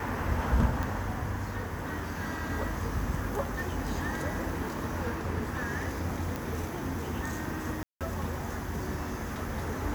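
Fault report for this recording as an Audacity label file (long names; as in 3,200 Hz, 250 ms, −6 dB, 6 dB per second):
0.830000	0.830000	click
6.360000	6.360000	click
7.830000	8.010000	drop-out 177 ms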